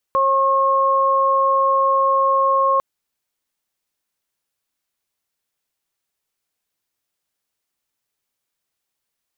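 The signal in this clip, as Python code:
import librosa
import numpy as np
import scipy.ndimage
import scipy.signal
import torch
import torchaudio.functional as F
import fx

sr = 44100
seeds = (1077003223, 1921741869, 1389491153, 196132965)

y = fx.additive_steady(sr, length_s=2.65, hz=541.0, level_db=-19.5, upper_db=(5.0,))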